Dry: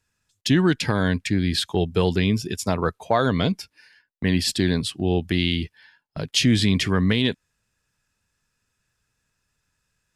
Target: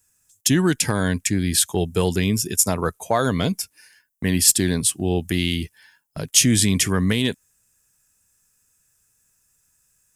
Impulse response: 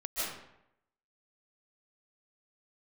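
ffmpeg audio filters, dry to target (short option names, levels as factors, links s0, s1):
-af "aexciter=amount=9.8:drive=1.1:freq=6100,volume=1.58,asoftclip=hard,volume=0.631"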